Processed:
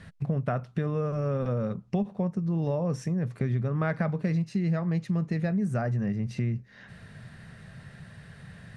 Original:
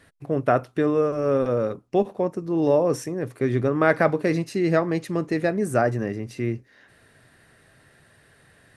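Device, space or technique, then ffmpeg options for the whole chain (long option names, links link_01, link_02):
jukebox: -af "lowpass=6800,lowshelf=frequency=240:width_type=q:width=3:gain=7.5,acompressor=threshold=-32dB:ratio=4,volume=4dB"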